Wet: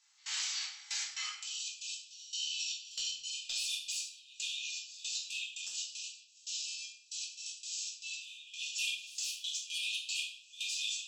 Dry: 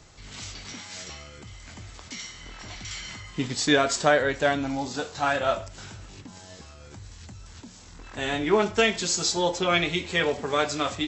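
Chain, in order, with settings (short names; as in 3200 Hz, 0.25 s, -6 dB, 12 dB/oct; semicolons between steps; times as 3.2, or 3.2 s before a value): differentiator; sine folder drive 18 dB, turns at -14 dBFS; step gate "..xxx..x.x.xx.x." 116 bpm -24 dB; compressor 10:1, threshold -28 dBFS, peak gain reduction 12 dB; brick-wall FIR high-pass 740 Hz, from 1.41 s 2400 Hz; hard clip -21 dBFS, distortion -30 dB; air absorption 55 m; shoebox room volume 160 m³, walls mixed, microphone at 1.6 m; gain -7 dB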